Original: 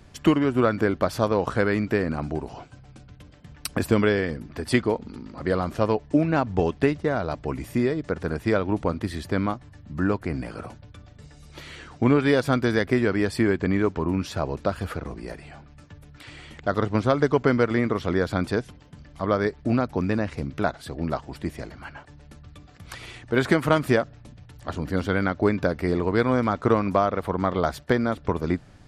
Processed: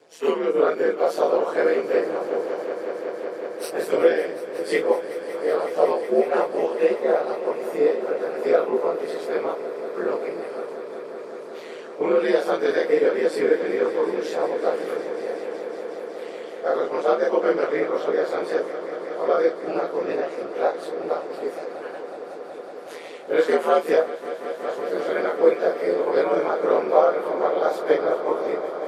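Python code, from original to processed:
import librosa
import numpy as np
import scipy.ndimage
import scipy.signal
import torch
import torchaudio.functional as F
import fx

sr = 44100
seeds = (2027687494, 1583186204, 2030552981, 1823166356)

p1 = fx.phase_scramble(x, sr, seeds[0], window_ms=100)
p2 = p1 + 0.46 * np.pad(p1, (int(3.1 * sr / 1000.0), 0))[:len(p1)]
p3 = p2 * np.sin(2.0 * np.pi * 80.0 * np.arange(len(p2)) / sr)
p4 = fx.highpass_res(p3, sr, hz=480.0, q=3.5)
p5 = p4 + fx.echo_swell(p4, sr, ms=185, loudest=5, wet_db=-16.5, dry=0)
y = F.gain(torch.from_numpy(p5), -1.0).numpy()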